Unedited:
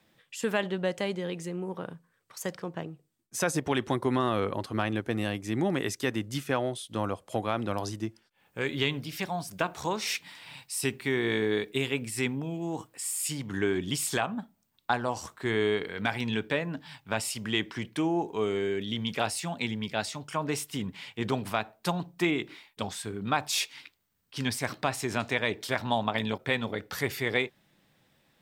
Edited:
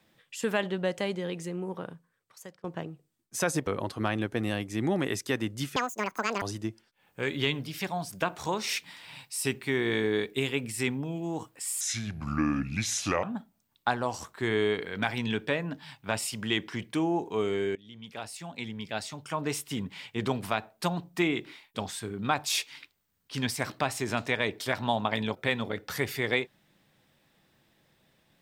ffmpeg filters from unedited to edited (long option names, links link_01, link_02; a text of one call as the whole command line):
ffmpeg -i in.wav -filter_complex "[0:a]asplit=8[link_01][link_02][link_03][link_04][link_05][link_06][link_07][link_08];[link_01]atrim=end=2.64,asetpts=PTS-STARTPTS,afade=type=out:start_time=1.74:duration=0.9:silence=0.0707946[link_09];[link_02]atrim=start=2.64:end=3.672,asetpts=PTS-STARTPTS,afade=type=in:duration=0.004:curve=hsin:silence=0.0707946[link_10];[link_03]atrim=start=4.408:end=6.504[link_11];[link_04]atrim=start=6.5:end=7.8,asetpts=PTS-STARTPTS,asetrate=87318,aresample=44100[link_12];[link_05]atrim=start=7.796:end=13.194[link_13];[link_06]atrim=start=13.19:end=14.26,asetpts=PTS-STARTPTS,asetrate=33075,aresample=44100[link_14];[link_07]atrim=start=14.256:end=18.78,asetpts=PTS-STARTPTS,afade=type=out:start_time=4.52:duration=0.004:curve=hsin:silence=0.0749894[link_15];[link_08]atrim=start=18.78,asetpts=PTS-STARTPTS,afade=type=in:duration=1.85:silence=0.0749894[link_16];[link_09][link_10]concat=n=2:v=0:a=1[link_17];[link_17][link_11]acrossfade=duration=0.004:curve1=hsin:curve2=hsin[link_18];[link_18][link_12]acrossfade=duration=0.004:curve1=hsin:curve2=hsin[link_19];[link_19][link_13]acrossfade=duration=0.004:curve1=hsin:curve2=hsin[link_20];[link_20][link_14]acrossfade=duration=0.004:curve1=hsin:curve2=hsin[link_21];[link_15][link_16]concat=n=2:v=0:a=1[link_22];[link_21][link_22]acrossfade=duration=0.004:curve1=hsin:curve2=hsin" out.wav